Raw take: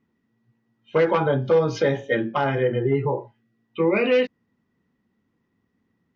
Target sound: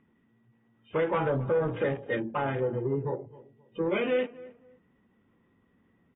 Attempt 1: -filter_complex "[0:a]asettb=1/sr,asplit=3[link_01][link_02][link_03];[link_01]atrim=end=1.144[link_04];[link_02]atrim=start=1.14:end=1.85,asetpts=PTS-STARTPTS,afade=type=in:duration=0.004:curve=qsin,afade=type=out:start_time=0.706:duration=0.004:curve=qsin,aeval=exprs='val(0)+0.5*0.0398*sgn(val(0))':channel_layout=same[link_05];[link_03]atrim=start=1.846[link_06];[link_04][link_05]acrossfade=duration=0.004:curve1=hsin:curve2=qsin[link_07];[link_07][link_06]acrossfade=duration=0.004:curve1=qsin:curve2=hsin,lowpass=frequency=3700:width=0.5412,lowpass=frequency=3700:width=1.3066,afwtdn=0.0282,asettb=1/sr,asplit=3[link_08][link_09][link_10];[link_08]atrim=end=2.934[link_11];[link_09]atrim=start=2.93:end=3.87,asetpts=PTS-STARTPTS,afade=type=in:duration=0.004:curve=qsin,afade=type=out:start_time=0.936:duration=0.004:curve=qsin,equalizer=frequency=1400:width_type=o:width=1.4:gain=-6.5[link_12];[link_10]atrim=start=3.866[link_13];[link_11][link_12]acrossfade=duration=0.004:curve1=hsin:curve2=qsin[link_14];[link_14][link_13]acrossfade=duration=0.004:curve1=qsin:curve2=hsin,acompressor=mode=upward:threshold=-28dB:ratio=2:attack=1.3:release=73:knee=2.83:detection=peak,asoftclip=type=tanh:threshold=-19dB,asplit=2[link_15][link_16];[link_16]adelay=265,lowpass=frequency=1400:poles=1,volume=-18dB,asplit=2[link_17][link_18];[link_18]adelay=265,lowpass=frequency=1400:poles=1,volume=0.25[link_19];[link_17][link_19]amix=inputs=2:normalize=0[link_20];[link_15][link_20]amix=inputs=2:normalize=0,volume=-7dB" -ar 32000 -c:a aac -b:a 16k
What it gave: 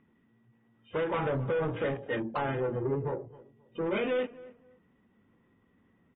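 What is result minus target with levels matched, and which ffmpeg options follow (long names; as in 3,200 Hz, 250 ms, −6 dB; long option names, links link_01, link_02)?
soft clipping: distortion +10 dB
-filter_complex "[0:a]asettb=1/sr,asplit=3[link_01][link_02][link_03];[link_01]atrim=end=1.144[link_04];[link_02]atrim=start=1.14:end=1.85,asetpts=PTS-STARTPTS,afade=type=in:duration=0.004:curve=qsin,afade=type=out:start_time=0.706:duration=0.004:curve=qsin,aeval=exprs='val(0)+0.5*0.0398*sgn(val(0))':channel_layout=same[link_05];[link_03]atrim=start=1.846[link_06];[link_04][link_05]acrossfade=duration=0.004:curve1=hsin:curve2=qsin[link_07];[link_07][link_06]acrossfade=duration=0.004:curve1=qsin:curve2=hsin,lowpass=frequency=3700:width=0.5412,lowpass=frequency=3700:width=1.3066,afwtdn=0.0282,asettb=1/sr,asplit=3[link_08][link_09][link_10];[link_08]atrim=end=2.934[link_11];[link_09]atrim=start=2.93:end=3.87,asetpts=PTS-STARTPTS,afade=type=in:duration=0.004:curve=qsin,afade=type=out:start_time=0.936:duration=0.004:curve=qsin,equalizer=frequency=1400:width_type=o:width=1.4:gain=-6.5[link_12];[link_10]atrim=start=3.866[link_13];[link_11][link_12]acrossfade=duration=0.004:curve1=hsin:curve2=qsin[link_14];[link_14][link_13]acrossfade=duration=0.004:curve1=qsin:curve2=hsin,acompressor=mode=upward:threshold=-28dB:ratio=2:attack=1.3:release=73:knee=2.83:detection=peak,asoftclip=type=tanh:threshold=-11.5dB,asplit=2[link_15][link_16];[link_16]adelay=265,lowpass=frequency=1400:poles=1,volume=-18dB,asplit=2[link_17][link_18];[link_18]adelay=265,lowpass=frequency=1400:poles=1,volume=0.25[link_19];[link_17][link_19]amix=inputs=2:normalize=0[link_20];[link_15][link_20]amix=inputs=2:normalize=0,volume=-7dB" -ar 32000 -c:a aac -b:a 16k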